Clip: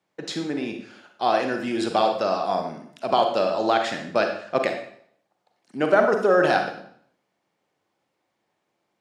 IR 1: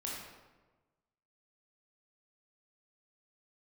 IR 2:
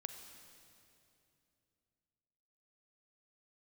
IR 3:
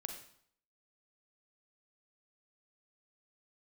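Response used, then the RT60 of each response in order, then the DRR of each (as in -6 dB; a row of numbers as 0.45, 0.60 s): 3; 1.2, 2.8, 0.60 s; -4.5, 7.0, 4.0 dB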